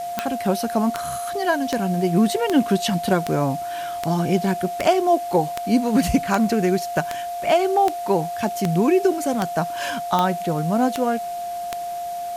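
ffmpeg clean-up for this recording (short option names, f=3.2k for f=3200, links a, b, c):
-af "adeclick=t=4,bandreject=f=700:w=30,afwtdn=0.0071"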